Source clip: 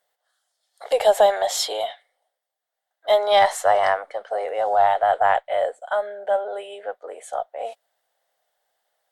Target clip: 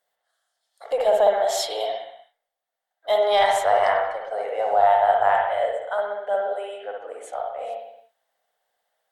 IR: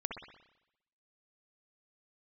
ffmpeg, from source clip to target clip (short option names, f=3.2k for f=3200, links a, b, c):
-filter_complex "[0:a]asettb=1/sr,asplit=3[a][b][c];[a]atrim=end=0.864[d];[b]atrim=start=0.86:end=1.47,asetpts=PTS-STARTPTS,afade=t=in:d=0.004:c=qsin,afade=t=out:st=0.606:d=0.004:c=qsin,highshelf=f=2.3k:g=-9.5[e];[c]atrim=start=1.466[f];[d][e]acrossfade=d=0.004:c1=hsin:c2=qsin[g];[g][f]acrossfade=d=0.004:c1=qsin:c2=hsin[h];[1:a]atrim=start_sample=2205,afade=t=out:st=0.44:d=0.01,atrim=end_sample=19845[i];[h][i]afir=irnorm=-1:irlink=0,volume=-2dB"